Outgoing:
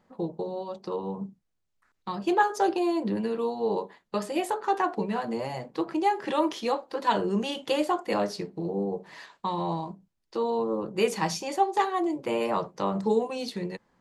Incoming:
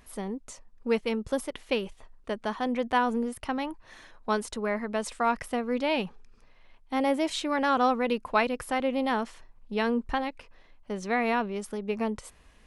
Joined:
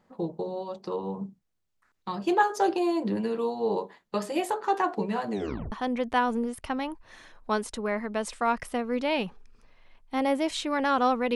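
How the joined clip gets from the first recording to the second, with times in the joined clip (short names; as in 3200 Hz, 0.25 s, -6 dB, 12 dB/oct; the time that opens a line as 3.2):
outgoing
5.31 tape stop 0.41 s
5.72 switch to incoming from 2.51 s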